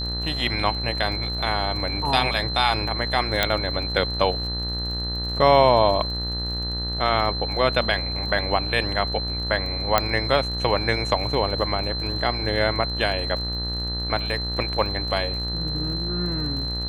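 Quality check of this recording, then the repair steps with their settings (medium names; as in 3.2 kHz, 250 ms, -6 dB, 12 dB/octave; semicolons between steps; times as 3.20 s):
buzz 60 Hz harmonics 33 -30 dBFS
crackle 49 per s -33 dBFS
whine 4.1 kHz -28 dBFS
3.43 s: pop -4 dBFS
9.98 s: pop -3 dBFS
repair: de-click; de-hum 60 Hz, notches 33; band-stop 4.1 kHz, Q 30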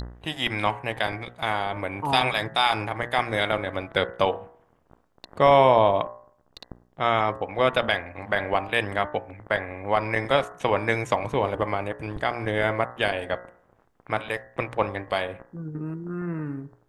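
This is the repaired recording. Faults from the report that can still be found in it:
3.43 s: pop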